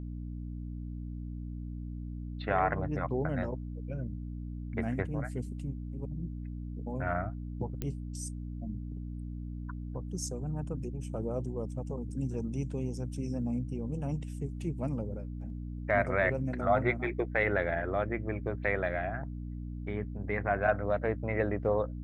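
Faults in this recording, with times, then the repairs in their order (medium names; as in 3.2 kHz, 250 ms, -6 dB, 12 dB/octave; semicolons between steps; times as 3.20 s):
hum 60 Hz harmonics 5 -39 dBFS
7.82 s: pop -20 dBFS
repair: de-click; de-hum 60 Hz, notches 5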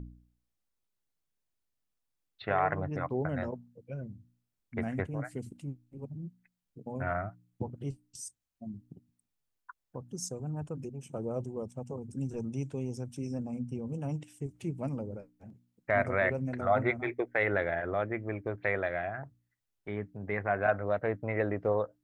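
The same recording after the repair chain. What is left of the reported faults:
nothing left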